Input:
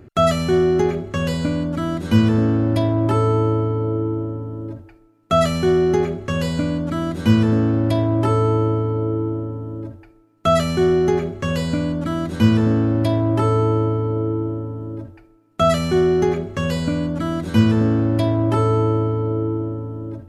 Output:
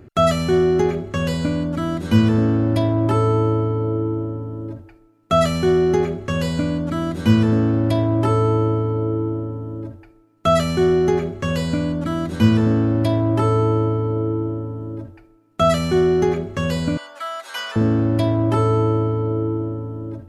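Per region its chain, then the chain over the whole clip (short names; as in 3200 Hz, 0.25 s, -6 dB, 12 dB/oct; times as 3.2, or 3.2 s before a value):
16.97–17.76 HPF 760 Hz 24 dB/oct + comb 7.5 ms, depth 69%
whole clip: dry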